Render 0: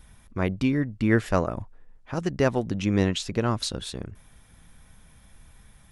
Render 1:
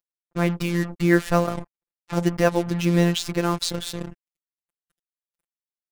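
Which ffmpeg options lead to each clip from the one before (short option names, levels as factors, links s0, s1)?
-af "acrusher=bits=5:mix=0:aa=0.5,afftfilt=real='hypot(re,im)*cos(PI*b)':imag='0':win_size=1024:overlap=0.75,volume=2.24"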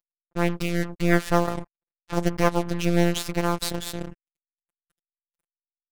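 -af "aeval=exprs='max(val(0),0)':c=same"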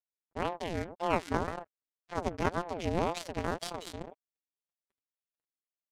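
-af "adynamicsmooth=sensitivity=7.5:basefreq=6800,aeval=exprs='val(0)*sin(2*PI*490*n/s+490*0.45/1.9*sin(2*PI*1.9*n/s))':c=same,volume=0.422"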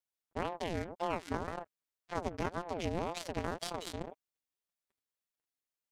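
-af "acompressor=threshold=0.0282:ratio=6,volume=1.12"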